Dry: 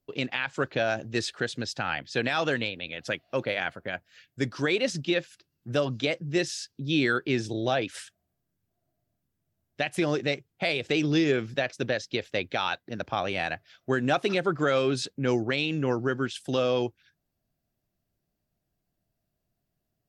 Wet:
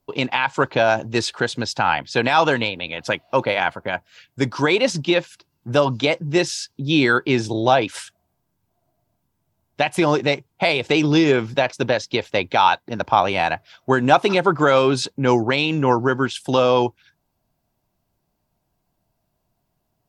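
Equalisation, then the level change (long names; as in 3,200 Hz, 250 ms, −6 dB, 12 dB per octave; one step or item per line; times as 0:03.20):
parametric band 930 Hz +13 dB 0.48 octaves
notch filter 1,800 Hz, Q 13
+7.5 dB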